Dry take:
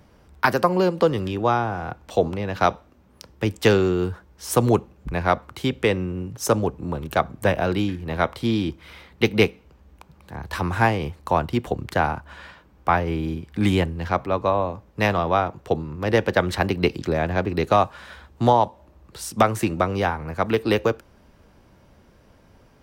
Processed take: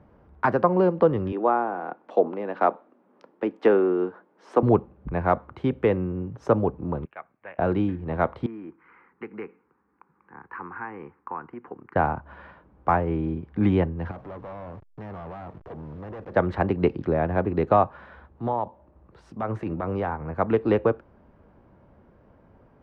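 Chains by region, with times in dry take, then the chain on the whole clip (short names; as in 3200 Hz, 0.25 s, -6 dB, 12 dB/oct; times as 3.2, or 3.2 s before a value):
1.32–4.63 treble ducked by the level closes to 2500 Hz, closed at -15.5 dBFS + HPF 240 Hz 24 dB/oct
7.05–7.59 band-pass 2400 Hz, Q 2.7 + air absorption 490 m
8.46–11.96 fixed phaser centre 1500 Hz, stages 4 + compressor 3:1, threshold -26 dBFS + BPF 380–2800 Hz
14.11–16.34 level-crossing sampler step -41 dBFS + compressor 2:1, threshold -31 dBFS + overloaded stage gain 34.5 dB
18.05–20.21 compressor 5:1, threshold -19 dBFS + transient shaper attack -9 dB, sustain -3 dB
whole clip: LPF 1300 Hz 12 dB/oct; de-esser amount 85%; low shelf 63 Hz -6.5 dB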